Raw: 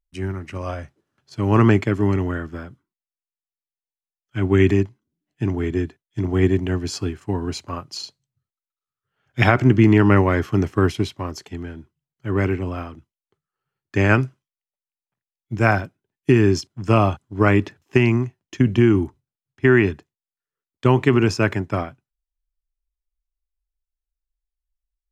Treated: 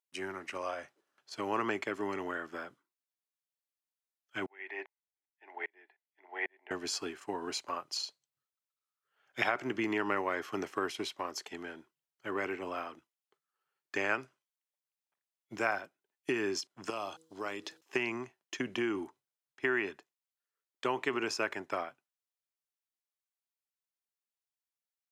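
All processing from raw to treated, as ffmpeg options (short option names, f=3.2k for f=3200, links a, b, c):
-filter_complex "[0:a]asettb=1/sr,asplit=3[a][b][c];[a]atrim=end=4.464[d];[b]atrim=start=4.46:end=6.71,asetpts=PTS-STARTPTS,afade=t=in:d=0.004:c=qsin,afade=t=out:st=2.246:d=0.004:c=qsin,highpass=f=470:w=0.5412,highpass=f=470:w=1.3066,equalizer=f=510:t=q:w=4:g=-4,equalizer=f=830:t=q:w=4:g=9,equalizer=f=1.2k:t=q:w=4:g=-10,equalizer=f=2k:t=q:w=4:g=9,equalizer=f=3.1k:t=q:w=4:g=-5,lowpass=f=3.4k:w=0.5412,lowpass=f=3.4k:w=1.3066,aeval=exprs='val(0)*pow(10,-36*if(lt(mod(-2.5*n/s,1),2*abs(-2.5)/1000),1-mod(-2.5*n/s,1)/(2*abs(-2.5)/1000),(mod(-2.5*n/s,1)-2*abs(-2.5)/1000)/(1-2*abs(-2.5)/1000))/20)':c=same[e];[c]atrim=start=6.706[f];[d][e]acrossfade=d=0.004:c1=hsin:c2=qsin[g];[g][f]acrossfade=d=0.004:c1=qsin:c2=hsin,asettb=1/sr,asplit=3[h][i][j];[h]atrim=end=16.904[k];[i]atrim=start=16.9:end=17.81,asetpts=PTS-STARTPTS,afade=t=in:d=0.004:c=qsin,afade=t=out:st=0.906:d=0.004:c=qsin,highshelf=f=3k:t=q:w=1.5:g=8.5,bandreject=f=160.9:t=h:w=4,bandreject=f=321.8:t=h:w=4,bandreject=f=482.7:t=h:w=4,acompressor=threshold=-35dB:ratio=2:attack=3.2:release=140:knee=1:detection=peak[l];[j]atrim=start=17.806[m];[k][l]acrossfade=d=0.004:c1=hsin:c2=qsin[n];[n][m]acrossfade=d=0.004:c1=qsin:c2=hsin,highpass=520,acompressor=threshold=-34dB:ratio=2,volume=-1.5dB"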